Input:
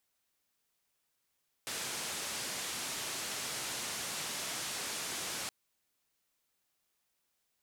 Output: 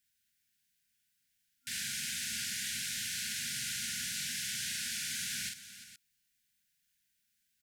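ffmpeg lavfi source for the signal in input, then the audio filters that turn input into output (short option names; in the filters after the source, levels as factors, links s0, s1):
-f lavfi -i "anoisesrc=c=white:d=3.82:r=44100:seed=1,highpass=f=100,lowpass=f=9000,volume=-30.4dB"
-af "afftfilt=real='re*(1-between(b*sr/4096,250,1400))':imag='im*(1-between(b*sr/4096,250,1400))':win_size=4096:overlap=0.75,aecho=1:1:45|350|469:0.668|0.188|0.188"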